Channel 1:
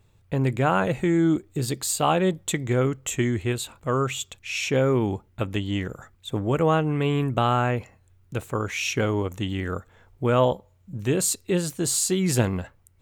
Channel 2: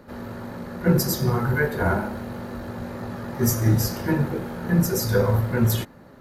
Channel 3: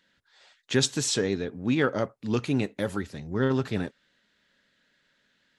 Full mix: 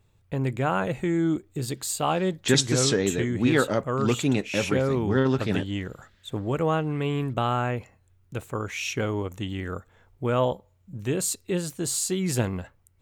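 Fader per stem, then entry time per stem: -3.5 dB, off, +2.5 dB; 0.00 s, off, 1.75 s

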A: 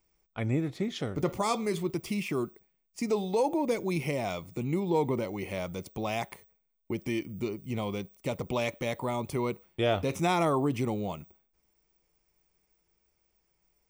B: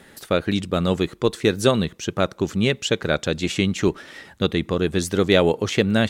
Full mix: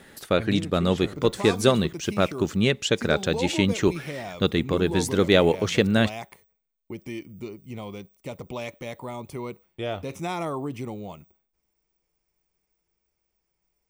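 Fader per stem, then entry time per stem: -3.5, -1.5 dB; 0.00, 0.00 s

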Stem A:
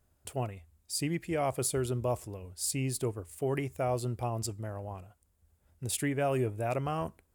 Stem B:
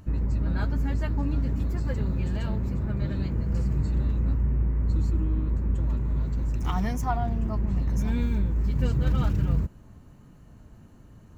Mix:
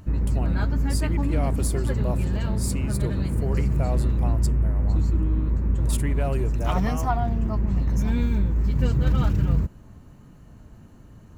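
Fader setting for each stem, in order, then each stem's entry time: -0.5, +3.0 dB; 0.00, 0.00 s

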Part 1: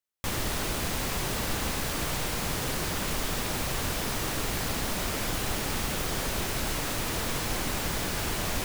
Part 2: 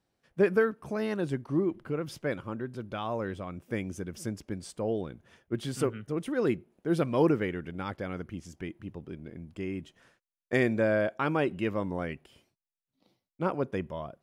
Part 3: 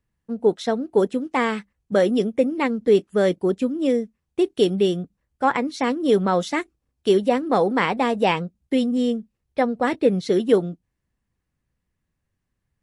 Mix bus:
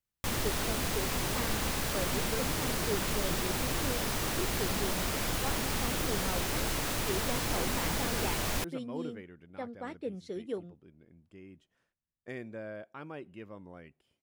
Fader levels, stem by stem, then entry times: -2.0, -16.0, -19.5 dB; 0.00, 1.75, 0.00 s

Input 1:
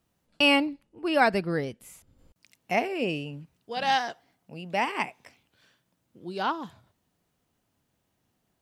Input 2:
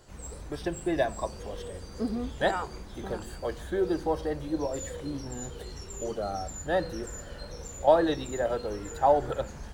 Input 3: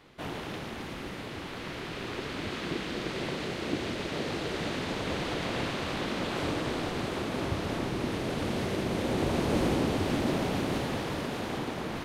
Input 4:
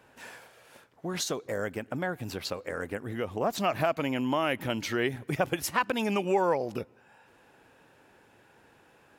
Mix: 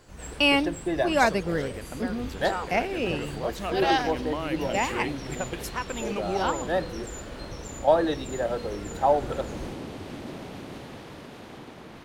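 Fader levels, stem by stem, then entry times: 0.0, +0.5, -9.5, -5.5 dB; 0.00, 0.00, 0.00, 0.00 s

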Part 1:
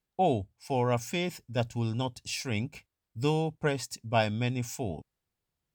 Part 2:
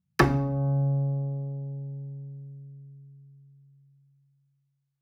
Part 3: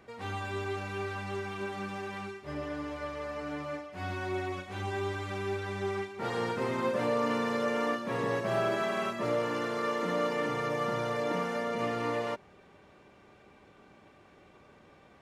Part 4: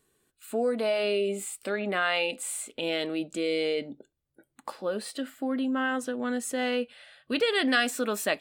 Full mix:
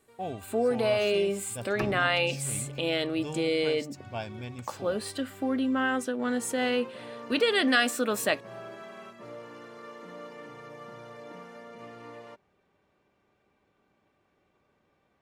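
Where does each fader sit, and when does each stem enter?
-10.0, -13.5, -13.5, +1.0 dB; 0.00, 1.60, 0.00, 0.00 s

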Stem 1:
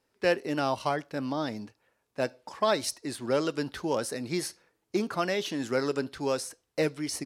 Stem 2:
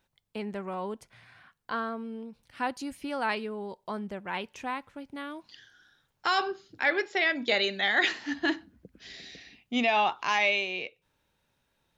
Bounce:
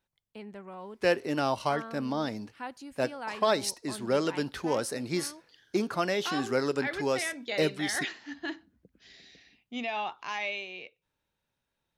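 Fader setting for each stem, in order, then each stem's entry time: 0.0, -8.5 dB; 0.80, 0.00 s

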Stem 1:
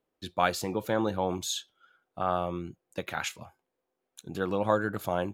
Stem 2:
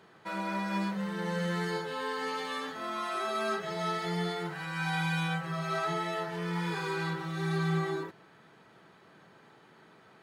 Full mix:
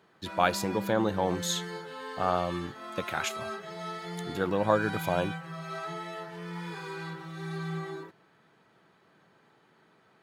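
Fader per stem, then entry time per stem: +1.0, -5.5 dB; 0.00, 0.00 s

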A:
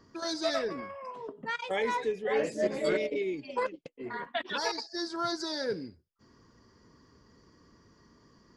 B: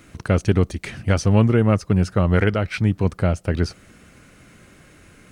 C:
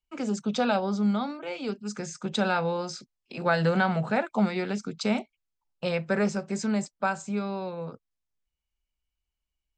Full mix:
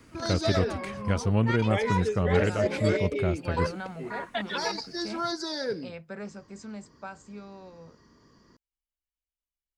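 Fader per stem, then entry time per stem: +1.5, -8.5, -13.5 dB; 0.00, 0.00, 0.00 s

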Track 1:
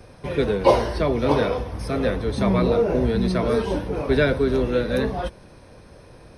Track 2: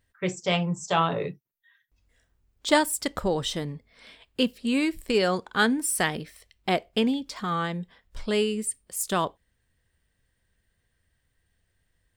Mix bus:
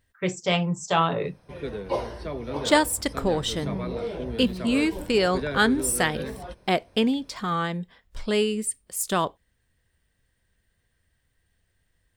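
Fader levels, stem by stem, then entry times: -11.5, +1.5 dB; 1.25, 0.00 s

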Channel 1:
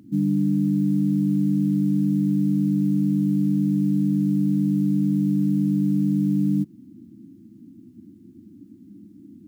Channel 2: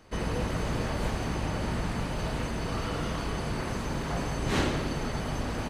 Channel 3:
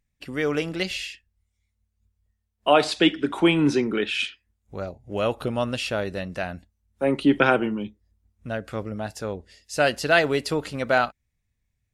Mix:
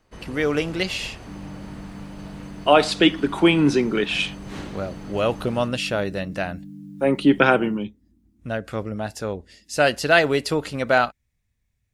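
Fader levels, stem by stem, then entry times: -18.5, -9.0, +2.5 dB; 1.15, 0.00, 0.00 s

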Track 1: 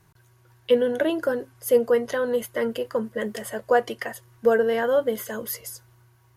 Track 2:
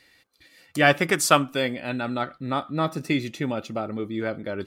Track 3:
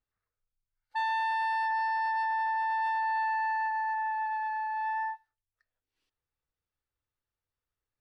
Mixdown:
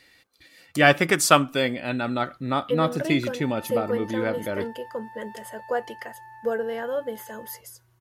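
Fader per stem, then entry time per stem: -7.0, +1.5, -14.5 dB; 2.00, 0.00, 2.45 s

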